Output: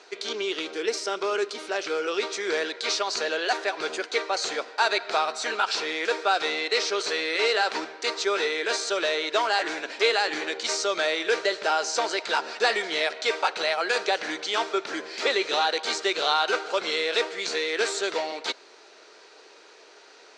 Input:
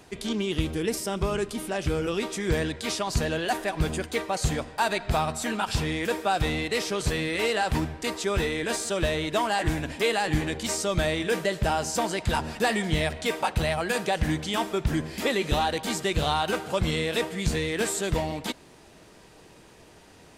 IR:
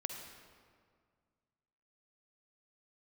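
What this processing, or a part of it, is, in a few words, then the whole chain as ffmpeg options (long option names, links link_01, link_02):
phone speaker on a table: -af "highpass=frequency=390:width=0.5412,highpass=frequency=390:width=1.3066,equalizer=frequency=410:width_type=q:width=4:gain=5,equalizer=frequency=1400:width_type=q:width=4:gain=8,equalizer=frequency=2300:width_type=q:width=4:gain=4,equalizer=frequency=4200:width_type=q:width=4:gain=9,equalizer=frequency=5900:width_type=q:width=4:gain=5,lowpass=frequency=6900:width=0.5412,lowpass=frequency=6900:width=1.3066"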